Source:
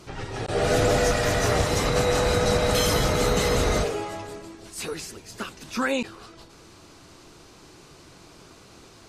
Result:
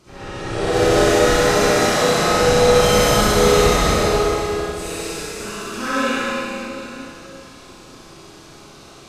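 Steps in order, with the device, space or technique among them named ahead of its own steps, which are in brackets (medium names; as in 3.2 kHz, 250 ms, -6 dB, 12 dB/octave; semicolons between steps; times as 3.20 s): 1.18–2.28 s: high-pass 160 Hz 24 dB/octave; tunnel (flutter echo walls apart 10.8 m, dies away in 0.59 s; reverberation RT60 3.2 s, pre-delay 45 ms, DRR -7 dB); Schroeder reverb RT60 0.86 s, combs from 30 ms, DRR -3.5 dB; trim -6.5 dB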